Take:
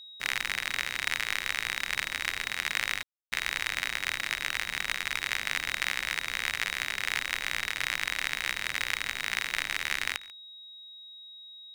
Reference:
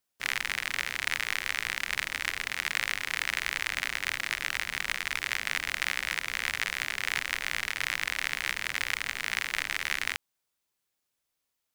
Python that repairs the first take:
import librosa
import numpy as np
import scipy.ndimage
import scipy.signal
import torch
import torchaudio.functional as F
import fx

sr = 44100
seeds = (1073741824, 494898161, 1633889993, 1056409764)

y = fx.notch(x, sr, hz=3800.0, q=30.0)
y = fx.fix_ambience(y, sr, seeds[0], print_start_s=11.1, print_end_s=11.6, start_s=3.03, end_s=3.32)
y = fx.fix_echo_inverse(y, sr, delay_ms=140, level_db=-20.5)